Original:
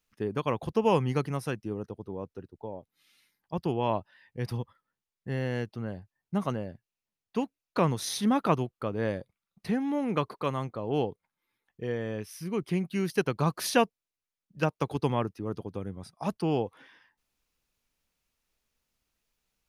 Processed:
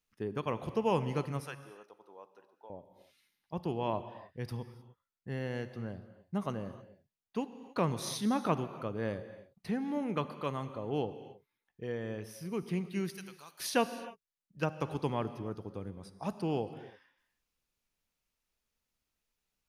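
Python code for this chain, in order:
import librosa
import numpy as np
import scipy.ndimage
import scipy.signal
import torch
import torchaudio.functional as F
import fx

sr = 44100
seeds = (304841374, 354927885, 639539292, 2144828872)

y = fx.highpass(x, sr, hz=800.0, slope=12, at=(1.4, 2.7))
y = fx.differentiator(y, sr, at=(13.15, 13.6))
y = fx.rev_gated(y, sr, seeds[0], gate_ms=330, shape='flat', drr_db=11.5)
y = y * librosa.db_to_amplitude(-5.5)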